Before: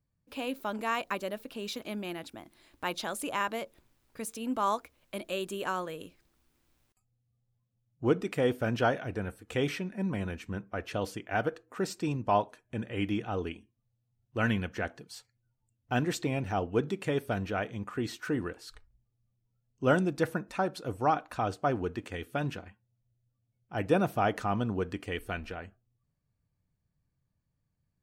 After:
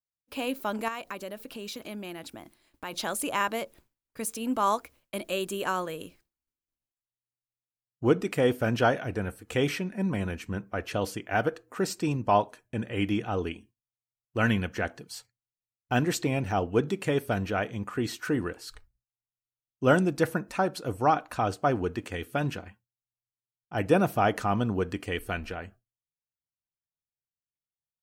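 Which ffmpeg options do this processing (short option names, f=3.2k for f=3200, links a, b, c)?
-filter_complex "[0:a]asettb=1/sr,asplit=3[a][b][c];[a]atrim=end=0.884[d];[b]atrim=start=0.88:end=2.93,asetpts=PTS-STARTPTS,afade=t=in:d=0.004:c=qsin,afade=t=out:st=2.046:d=0.004:c=qsin,acompressor=threshold=-42dB:ratio=2:attack=3.2:release=140:knee=1:detection=peak[e];[c]atrim=start=2.926[f];[d][e]acrossfade=d=0.004:c1=hsin:c2=qsin[g];[g][f]acrossfade=d=0.004:c1=qsin:c2=hsin,bandreject=f=3.6k:w=24,agate=range=-33dB:threshold=-53dB:ratio=3:detection=peak,highshelf=f=7.3k:g=5,volume=3.5dB"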